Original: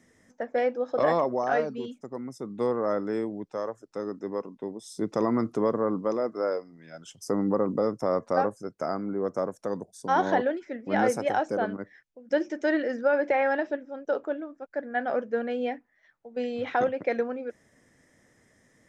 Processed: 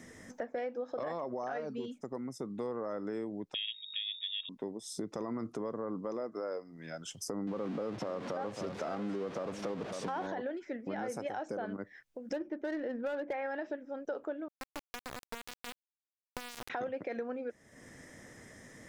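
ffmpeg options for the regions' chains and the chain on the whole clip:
-filter_complex "[0:a]asettb=1/sr,asplit=3[s0][s1][s2];[s0]atrim=end=3.544[s3];[s1]atrim=start=3.54:end=4.49,asetpts=PTS-STARTPTS,afade=t=in:d=0.004:c=qsin,afade=t=out:st=0.946:d=0.004:c=qsin,aeval=exprs='val(0)+0.00447*(sin(2*PI*50*n/s)+sin(2*PI*2*50*n/s)/2+sin(2*PI*3*50*n/s)/3+sin(2*PI*4*50*n/s)/4+sin(2*PI*5*50*n/s)/5)':c=same,lowpass=f=3200:t=q:w=0.5098,lowpass=f=3200:t=q:w=0.6013,lowpass=f=3200:t=q:w=0.9,lowpass=f=3200:t=q:w=2.563,afreqshift=-3800[s4];[s2]atrim=start=4.486[s5];[s3][s4]acrossfade=d=0.004:c1=hsin:c2=qsin[s6];[s6][s5]acrossfade=d=0.004:c1=qsin:c2=hsin,asettb=1/sr,asplit=3[s7][s8][s9];[s7]atrim=end=7.474[s10];[s8]atrim=start=7.47:end=10.27,asetpts=PTS-STARTPTS,afade=t=in:d=0.004:c=qsin,afade=t=out:st=2.796:d=0.004:c=qsin,aeval=exprs='val(0)+0.5*0.0266*sgn(val(0))':c=same,highpass=110,lowpass=4000,aecho=1:1:545:0.224,atrim=end_sample=123480[s11];[s9]atrim=start=10.266[s12];[s10][s11]acrossfade=d=0.004:c1=hsin:c2=qsin[s13];[s13][s12]acrossfade=d=0.004:c1=qsin:c2=hsin,asettb=1/sr,asplit=3[s14][s15][s16];[s14]atrim=end=12.334[s17];[s15]atrim=start=12.33:end=13.33,asetpts=PTS-STARTPTS,afade=t=in:d=0.004:c=qsin,afade=t=out:st=0.996:d=0.004:c=qsin,bass=f=250:g=3,treble=f=4000:g=-4,adynamicsmooth=sensitivity=2:basefreq=1300,asoftclip=type=hard:threshold=0.141[s18];[s16]atrim=start=13.326[s19];[s17][s18]acrossfade=d=0.004:c1=hsin:c2=qsin[s20];[s20][s19]acrossfade=d=0.004:c1=qsin:c2=hsin,asettb=1/sr,asplit=3[s21][s22][s23];[s21]atrim=end=14.484[s24];[s22]atrim=start=14.48:end=16.7,asetpts=PTS-STARTPTS,afade=t=in:d=0.004:c=qsin,afade=t=out:st=2.216:d=0.004:c=qsin,lowshelf=f=420:g=-4,acompressor=threshold=0.0158:ratio=8:attack=3.2:release=140:knee=1:detection=peak,acrusher=bits=3:dc=4:mix=0:aa=0.000001[s25];[s23]atrim=start=16.696[s26];[s24][s25]acrossfade=d=0.004:c1=hsin:c2=qsin[s27];[s27][s26]acrossfade=d=0.004:c1=qsin:c2=hsin,alimiter=limit=0.0794:level=0:latency=1:release=100,acompressor=threshold=0.00224:ratio=2.5,volume=2.99"

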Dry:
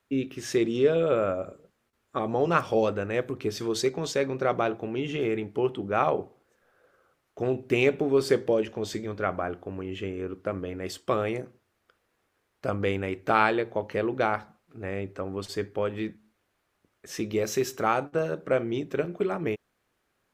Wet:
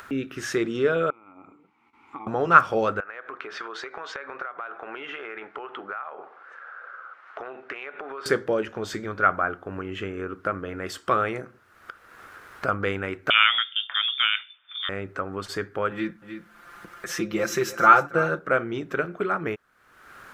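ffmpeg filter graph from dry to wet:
-filter_complex "[0:a]asettb=1/sr,asplit=3[s0][s1][s2];[s0]atrim=end=1.104[s3];[s1]atrim=start=1.1:end=2.27,asetpts=PTS-STARTPTS,afade=t=in:d=0.004:c=qsin,afade=t=out:st=1.166:d=0.004:c=qsin,equalizer=f=320:w=1.4:g=-7.5,acompressor=threshold=0.0251:ratio=10:attack=3.2:release=140:knee=1:detection=peak,asplit=3[s4][s5][s6];[s4]bandpass=f=300:t=q:w=8,volume=1[s7];[s5]bandpass=f=870:t=q:w=8,volume=0.501[s8];[s6]bandpass=f=2240:t=q:w=8,volume=0.355[s9];[s7][s8][s9]amix=inputs=3:normalize=0[s10];[s2]atrim=start=2.266[s11];[s3][s10]acrossfade=d=0.004:c1=hsin:c2=qsin[s12];[s12][s11]acrossfade=d=0.004:c1=qsin:c2=hsin,asettb=1/sr,asplit=3[s13][s14][s15];[s13]atrim=end=3.004[s16];[s14]atrim=start=3:end=8.26,asetpts=PTS-STARTPTS,afade=t=in:d=0.004:c=qsin,afade=t=out:st=5.256:d=0.004:c=qsin,highpass=790,lowpass=2300,acompressor=threshold=0.00891:ratio=12:attack=3.2:release=140:knee=1:detection=peak[s17];[s15]atrim=start=8.256[s18];[s16][s17]acrossfade=d=0.004:c1=hsin:c2=qsin[s19];[s19][s18]acrossfade=d=0.004:c1=qsin:c2=hsin,asettb=1/sr,asplit=3[s20][s21][s22];[s20]atrim=end=13.304[s23];[s21]atrim=start=13.3:end=14.89,asetpts=PTS-STARTPTS,afade=t=in:d=0.004:c=qsin,afade=t=out:st=1.586:d=0.004:c=qsin,equalizer=f=160:t=o:w=0.51:g=12.5,lowpass=f=3100:t=q:w=0.5098,lowpass=f=3100:t=q:w=0.6013,lowpass=f=3100:t=q:w=0.9,lowpass=f=3100:t=q:w=2.563,afreqshift=-3700[s24];[s22]atrim=start=14.886[s25];[s23][s24]acrossfade=d=0.004:c1=hsin:c2=qsin[s26];[s26][s25]acrossfade=d=0.004:c1=qsin:c2=hsin,asettb=1/sr,asplit=3[s27][s28][s29];[s27]atrim=end=15.914[s30];[s28]atrim=start=15.91:end=18.39,asetpts=PTS-STARTPTS,afade=t=in:d=0.004:c=qsin,afade=t=out:st=2.476:d=0.004:c=qsin,aecho=1:1:5.8:0.88,atrim=end_sample=109368,aecho=1:1:308:0.158,atrim=end_sample=109368[s31];[s29]atrim=start=18.386[s32];[s30][s31]acrossfade=d=0.004:c1=hsin:c2=qsin[s33];[s33][s32]acrossfade=d=0.004:c1=qsin:c2=hsin,equalizer=f=1400:t=o:w=0.8:g=15,acompressor=mode=upward:threshold=0.0562:ratio=2.5,volume=0.841"

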